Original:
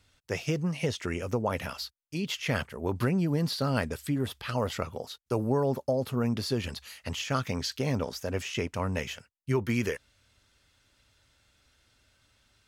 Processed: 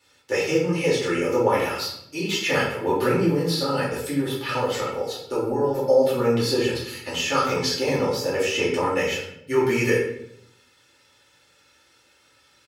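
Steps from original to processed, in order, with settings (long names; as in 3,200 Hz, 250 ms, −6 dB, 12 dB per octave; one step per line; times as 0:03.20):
high-pass filter 230 Hz 12 dB per octave
comb filter 2.3 ms, depth 56%
0:03.26–0:05.74: downward compressor, threshold −29 dBFS, peak gain reduction 8 dB
rectangular room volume 160 cubic metres, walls mixed, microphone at 2.5 metres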